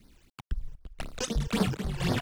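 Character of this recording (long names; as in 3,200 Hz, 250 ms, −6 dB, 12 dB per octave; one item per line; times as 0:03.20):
a quantiser's noise floor 10 bits, dither none
sample-and-hold tremolo 4 Hz, depth 90%
phaser sweep stages 12, 3.9 Hz, lowest notch 200–2,800 Hz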